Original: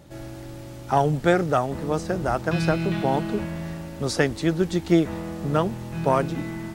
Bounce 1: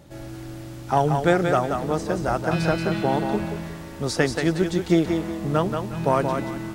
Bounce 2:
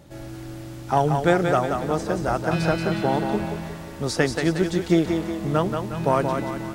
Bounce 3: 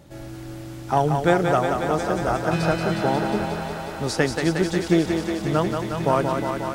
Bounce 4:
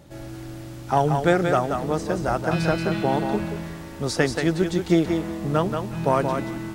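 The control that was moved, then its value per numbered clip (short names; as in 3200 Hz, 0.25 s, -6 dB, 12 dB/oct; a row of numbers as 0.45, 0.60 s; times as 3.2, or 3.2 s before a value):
thinning echo, feedback: 28, 48, 83, 15%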